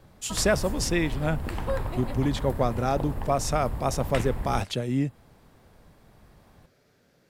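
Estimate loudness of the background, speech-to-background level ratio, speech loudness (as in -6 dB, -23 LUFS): -34.5 LUFS, 7.0 dB, -27.5 LUFS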